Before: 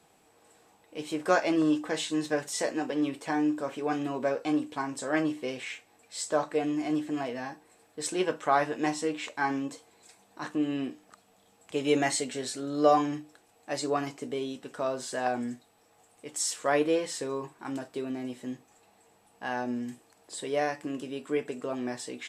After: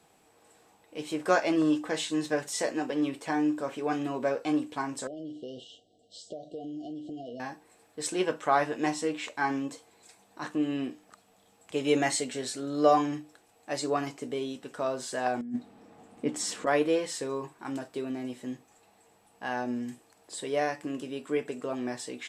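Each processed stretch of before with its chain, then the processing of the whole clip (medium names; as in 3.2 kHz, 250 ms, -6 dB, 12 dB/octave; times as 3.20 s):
5.07–7.40 s: compression 8:1, threshold -35 dBFS + brick-wall FIR band-stop 760–2800 Hz + distance through air 130 m
15.41–16.67 s: low-pass 2.2 kHz 6 dB/octave + peaking EQ 230 Hz +14.5 dB 1.1 oct + compressor with a negative ratio -32 dBFS
whole clip: none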